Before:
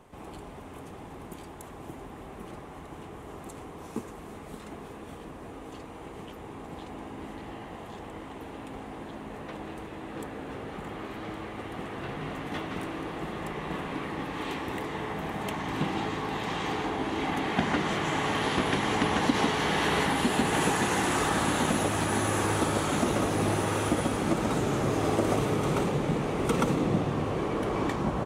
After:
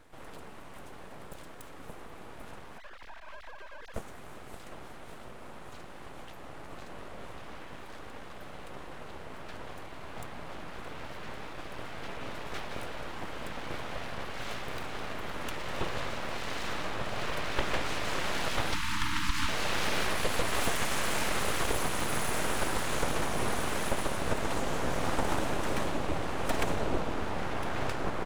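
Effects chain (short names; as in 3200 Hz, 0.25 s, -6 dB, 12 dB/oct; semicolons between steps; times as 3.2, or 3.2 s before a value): 2.78–3.94 sine-wave speech; full-wave rectifier; 18.73–19.49 spectral delete 340–850 Hz; gain -1 dB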